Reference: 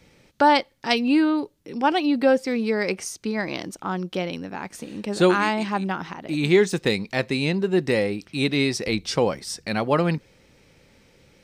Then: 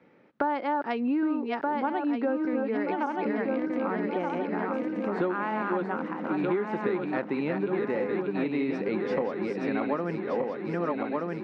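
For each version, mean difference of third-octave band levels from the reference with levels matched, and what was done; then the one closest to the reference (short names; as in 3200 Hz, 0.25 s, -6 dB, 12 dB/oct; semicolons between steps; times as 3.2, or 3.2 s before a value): 10.0 dB: regenerating reverse delay 0.613 s, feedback 69%, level -4 dB; Chebyshev band-pass 240–1500 Hz, order 2; compressor 6:1, threshold -25 dBFS, peak gain reduction 13 dB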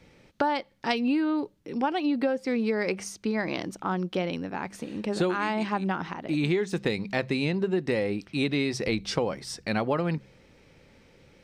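3.0 dB: high shelf 5000 Hz -9 dB; de-hum 66.24 Hz, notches 3; compressor 12:1, threshold -22 dBFS, peak gain reduction 10.5 dB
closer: second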